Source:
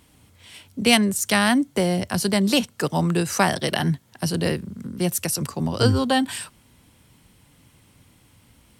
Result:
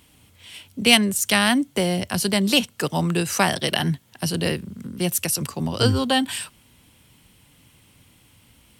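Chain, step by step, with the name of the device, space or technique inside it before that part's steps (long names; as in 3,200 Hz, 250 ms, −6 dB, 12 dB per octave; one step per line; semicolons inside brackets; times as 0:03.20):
presence and air boost (parametric band 2,900 Hz +5.5 dB 0.81 octaves; high-shelf EQ 9,400 Hz +6 dB)
level −1 dB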